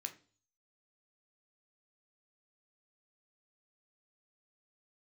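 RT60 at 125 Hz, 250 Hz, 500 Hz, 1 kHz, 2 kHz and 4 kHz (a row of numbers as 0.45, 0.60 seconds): 0.65, 0.50, 0.45, 0.35, 0.35, 0.45 seconds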